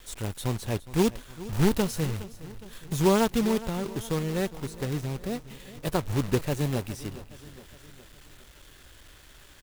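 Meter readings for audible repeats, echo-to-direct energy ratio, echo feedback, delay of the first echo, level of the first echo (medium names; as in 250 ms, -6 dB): 4, -15.5 dB, 54%, 414 ms, -17.0 dB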